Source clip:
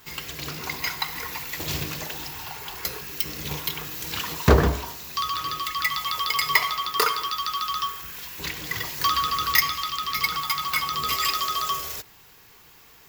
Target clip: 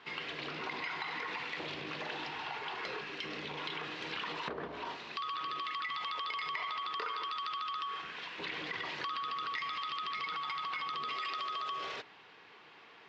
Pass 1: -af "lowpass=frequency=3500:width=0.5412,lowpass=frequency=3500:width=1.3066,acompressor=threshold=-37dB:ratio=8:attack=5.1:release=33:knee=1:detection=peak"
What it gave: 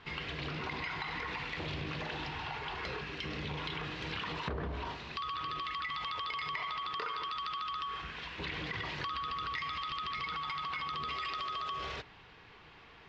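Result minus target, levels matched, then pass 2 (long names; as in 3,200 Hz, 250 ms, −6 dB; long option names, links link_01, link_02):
250 Hz band +3.5 dB
-af "lowpass=frequency=3500:width=0.5412,lowpass=frequency=3500:width=1.3066,acompressor=threshold=-37dB:ratio=8:attack=5.1:release=33:knee=1:detection=peak,highpass=270"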